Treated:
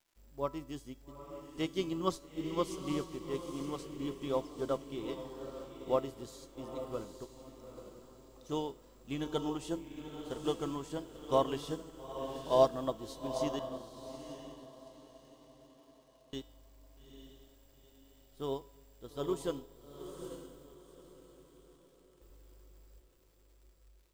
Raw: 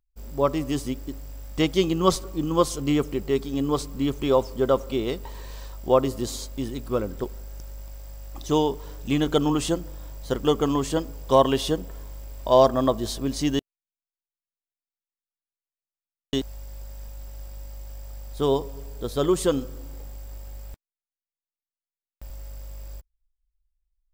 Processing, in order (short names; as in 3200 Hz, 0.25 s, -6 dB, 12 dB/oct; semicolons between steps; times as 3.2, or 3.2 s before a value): crackle 230/s -39 dBFS; resonator 330 Hz, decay 0.62 s, mix 70%; diffused feedback echo 0.866 s, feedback 45%, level -5 dB; upward expander 1.5:1, over -43 dBFS